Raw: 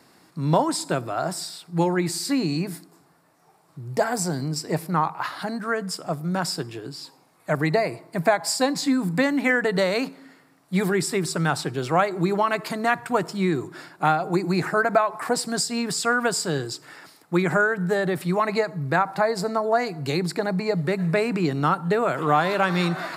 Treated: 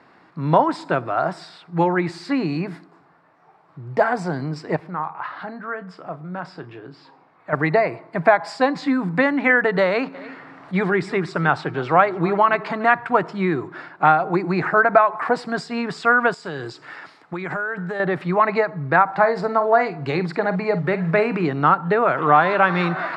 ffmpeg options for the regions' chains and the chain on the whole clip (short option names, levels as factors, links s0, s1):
-filter_complex "[0:a]asettb=1/sr,asplit=3[s0][s1][s2];[s0]atrim=end=4.764[s3];[s1]atrim=start=4.76:end=7.53,asetpts=PTS-STARTPTS,afade=t=in:d=0.004:c=qsin,afade=t=out:st=2.766:d=0.004:c=qsin,lowpass=f=4000:p=1,acompressor=threshold=0.00562:ratio=1.5:attack=3.2:release=140:knee=1:detection=peak,asplit=2[s4][s5];[s5]adelay=33,volume=0.251[s6];[s4][s6]amix=inputs=2:normalize=0,atrim=end_sample=122157[s7];[s2]atrim=start=7.526[s8];[s3][s7]acrossfade=d=0.004:c1=hsin:c2=qsin[s9];[s9][s8]acrossfade=d=0.004:c1=qsin:c2=hsin,asettb=1/sr,asplit=3[s10][s11][s12];[s10]atrim=end=9.854[s13];[s11]atrim=start=9.85:end=12.89,asetpts=PTS-STARTPTS,afade=t=in:d=0.004:c=qsin,afade=t=out:st=3.036:d=0.004:c=qsin,lowpass=9800,acompressor=mode=upward:threshold=0.0251:ratio=2.5:attack=3.2:release=140:knee=2.83:detection=peak,aecho=1:1:294:0.119,atrim=end_sample=134064[s14];[s12]atrim=start=12.886[s15];[s13][s14]acrossfade=d=0.004:c1=hsin:c2=qsin[s16];[s16][s15]acrossfade=d=0.004:c1=qsin:c2=hsin,asettb=1/sr,asplit=3[s17][s18][s19];[s17]atrim=end=16.344[s20];[s18]atrim=start=16.34:end=18,asetpts=PTS-STARTPTS,afade=t=in:d=0.004:c=qsin,afade=t=out:st=1.656:d=0.004:c=qsin,lowpass=11000,highshelf=f=3800:g=10,acompressor=threshold=0.0501:ratio=16:attack=3.2:release=140:knee=1:detection=peak[s21];[s19]atrim=start=17.996[s22];[s20][s21]acrossfade=d=0.004:c1=hsin:c2=qsin[s23];[s23][s22]acrossfade=d=0.004:c1=qsin:c2=hsin,asettb=1/sr,asplit=3[s24][s25][s26];[s24]atrim=end=19.084[s27];[s25]atrim=start=19.08:end=21.49,asetpts=PTS-STARTPTS,afade=t=in:d=0.004:c=qsin,afade=t=out:st=2.406:d=0.004:c=qsin,acrusher=bits=9:mode=log:mix=0:aa=0.000001,asplit=2[s28][s29];[s29]adelay=48,volume=0.251[s30];[s28][s30]amix=inputs=2:normalize=0,atrim=end_sample=106281[s31];[s26]atrim=start=21.486[s32];[s27][s31]acrossfade=d=0.004:c1=hsin:c2=qsin[s33];[s33][s32]acrossfade=d=0.004:c1=qsin:c2=hsin,lowpass=2700,equalizer=f=1300:w=0.46:g=7"